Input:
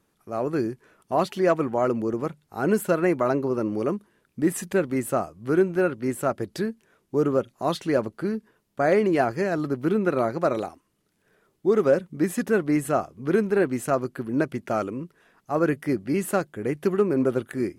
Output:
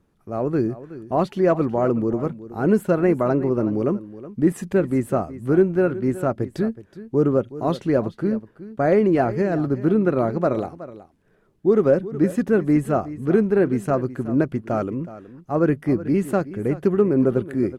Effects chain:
spectral tilt −2.5 dB per octave
on a send: single-tap delay 371 ms −15.5 dB

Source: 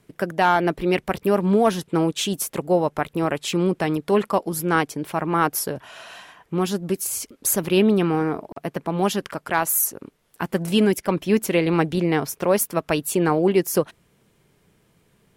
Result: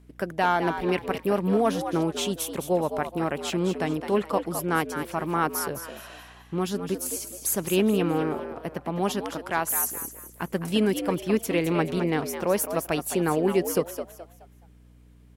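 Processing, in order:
echo with shifted repeats 212 ms, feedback 32%, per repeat +81 Hz, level −9 dB
mains hum 60 Hz, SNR 26 dB
level −5 dB

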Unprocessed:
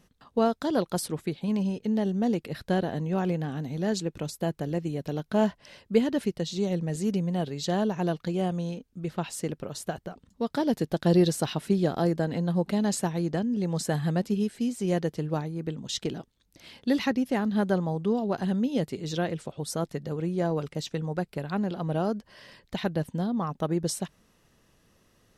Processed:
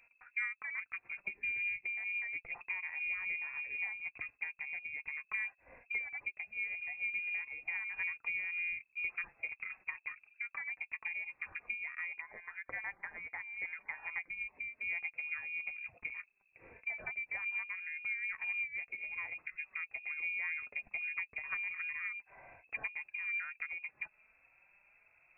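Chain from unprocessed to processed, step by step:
0:12.20–0:14.40: high-pass filter 960 Hz → 310 Hz 12 dB per octave
downward compressor 6 to 1, threshold −34 dBFS, peak gain reduction 17 dB
flanger 0.17 Hz, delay 4.2 ms, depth 1.8 ms, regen +50%
voice inversion scrambler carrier 2,600 Hz

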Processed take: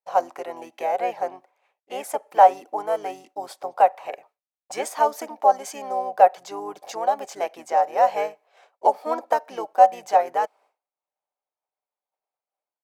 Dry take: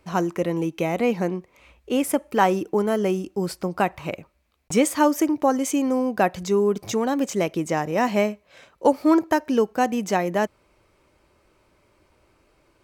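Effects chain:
high-pass with resonance 760 Hz, resonance Q 7.6
downward expander −41 dBFS
pitch-shifted copies added −5 semitones −6 dB
level −8 dB

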